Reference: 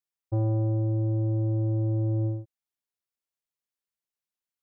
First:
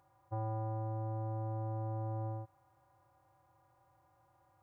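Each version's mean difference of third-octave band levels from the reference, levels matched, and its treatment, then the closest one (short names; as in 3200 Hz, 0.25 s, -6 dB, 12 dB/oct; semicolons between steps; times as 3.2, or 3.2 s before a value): 4.5 dB: per-bin compression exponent 0.4; resonant low shelf 600 Hz -13.5 dB, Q 1.5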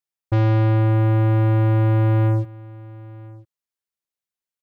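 6.0 dB: sample leveller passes 3; echo 0.998 s -21.5 dB; gain +6 dB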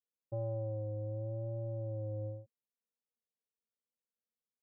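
2.5 dB: double band-pass 330 Hz, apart 1 oct; vibrato 0.8 Hz 60 cents; gain +5.5 dB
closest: third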